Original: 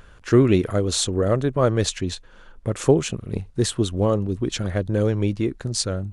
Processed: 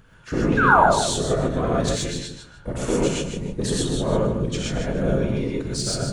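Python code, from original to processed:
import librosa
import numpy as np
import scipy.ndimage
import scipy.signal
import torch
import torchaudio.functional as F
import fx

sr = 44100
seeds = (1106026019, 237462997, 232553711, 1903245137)

p1 = fx.rider(x, sr, range_db=10, speed_s=2.0)
p2 = x + (p1 * librosa.db_to_amplitude(-2.0))
p3 = fx.cheby_harmonics(p2, sr, harmonics=(5,), levels_db=(-19,), full_scale_db=1.5)
p4 = fx.whisperise(p3, sr, seeds[0])
p5 = fx.spec_paint(p4, sr, seeds[1], shape='fall', start_s=0.57, length_s=0.25, low_hz=550.0, high_hz=1700.0, level_db=-5.0)
p6 = p5 + fx.echo_feedback(p5, sr, ms=152, feedback_pct=23, wet_db=-8.0, dry=0)
p7 = fx.rev_gated(p6, sr, seeds[2], gate_ms=150, shape='rising', drr_db=-4.5)
y = p7 * librosa.db_to_amplitude(-15.0)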